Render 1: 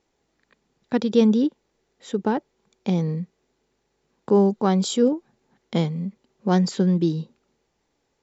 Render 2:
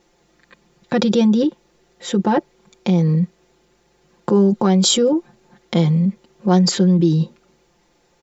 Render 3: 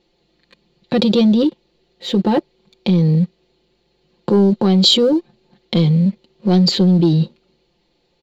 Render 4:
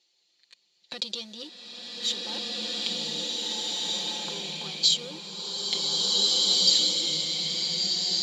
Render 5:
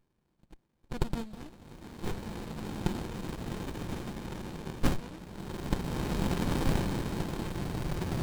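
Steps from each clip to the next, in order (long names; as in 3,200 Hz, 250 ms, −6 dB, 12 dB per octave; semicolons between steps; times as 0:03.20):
comb filter 5.7 ms, depth 81%; in parallel at +2 dB: compressor whose output falls as the input rises −25 dBFS, ratio −1; on the sum: level −1 dB
drawn EQ curve 470 Hz 0 dB, 1,500 Hz −9 dB, 3,000 Hz +2 dB, 5,700 Hz −12 dB; leveller curve on the samples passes 1; parametric band 4,300 Hz +13.5 dB 0.35 octaves; level −1 dB
downward compressor 4 to 1, threshold −19 dBFS, peak gain reduction 9.5 dB; resonant band-pass 6,800 Hz, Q 1.5; slow-attack reverb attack 1,860 ms, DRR −7 dB; level +6 dB
spectral magnitudes quantised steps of 15 dB; windowed peak hold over 65 samples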